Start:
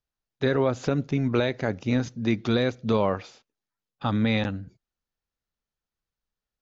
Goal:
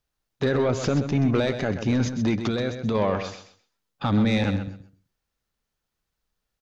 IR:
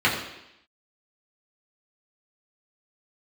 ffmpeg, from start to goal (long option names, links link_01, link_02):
-filter_complex "[0:a]alimiter=limit=-18dB:level=0:latency=1:release=43,asplit=3[link_01][link_02][link_03];[link_01]afade=type=out:start_time=2.39:duration=0.02[link_04];[link_02]acompressor=threshold=-31dB:ratio=2.5,afade=type=in:start_time=2.39:duration=0.02,afade=type=out:start_time=2.94:duration=0.02[link_05];[link_03]afade=type=in:start_time=2.94:duration=0.02[link_06];[link_04][link_05][link_06]amix=inputs=3:normalize=0,asoftclip=type=tanh:threshold=-22dB,aecho=1:1:129|258|387:0.335|0.0703|0.0148,volume=7.5dB"